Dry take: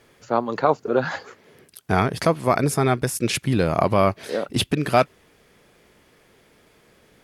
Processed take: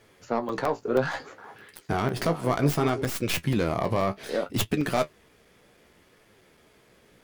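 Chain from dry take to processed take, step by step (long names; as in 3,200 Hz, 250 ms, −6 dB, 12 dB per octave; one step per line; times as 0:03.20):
stylus tracing distortion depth 0.17 ms
brickwall limiter −11.5 dBFS, peak gain reduction 7.5 dB
flanger 0.64 Hz, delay 8.9 ms, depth 8.9 ms, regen +44%
0:01.02–0:03.10: echo through a band-pass that steps 178 ms, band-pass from 360 Hz, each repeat 1.4 octaves, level −7 dB
regular buffer underruns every 0.16 s, samples 128, zero, from 0:00.49
level +1.5 dB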